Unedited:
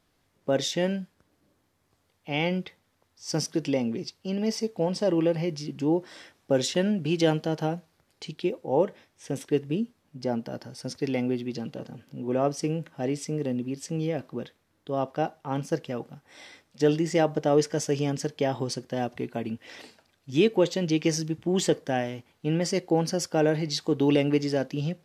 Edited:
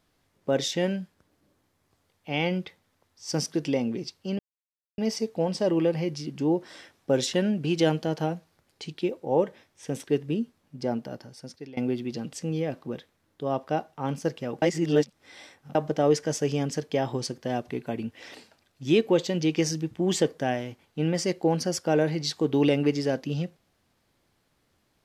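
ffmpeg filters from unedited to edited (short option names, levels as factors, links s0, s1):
-filter_complex "[0:a]asplit=6[s0][s1][s2][s3][s4][s5];[s0]atrim=end=4.39,asetpts=PTS-STARTPTS,afade=t=out:st=4.386:d=0.004:c=hsin,apad=pad_dur=0.59[s6];[s1]atrim=start=4.39:end=11.18,asetpts=PTS-STARTPTS,afade=t=in:d=0.004:c=hsin,afade=t=out:st=5.95:d=0.84:silence=0.1[s7];[s2]atrim=start=11.18:end=11.742,asetpts=PTS-STARTPTS,afade=t=in:d=0.004:c=hsin:silence=0.1[s8];[s3]atrim=start=13.798:end=16.092[s9];[s4]atrim=start=16.088:end=17.222,asetpts=PTS-STARTPTS,areverse[s10];[s5]atrim=start=17.218[s11];[s6][s7][s8]concat=n=3:v=0:a=1[s12];[s12][s9]acrossfade=d=0.004:c1=hsin:c2=hsin[s13];[s13][s10]acrossfade=d=0.004:c1=hsin:c2=hsin[s14];[s14][s11]acrossfade=d=0.004:c1=hsin:c2=hsin"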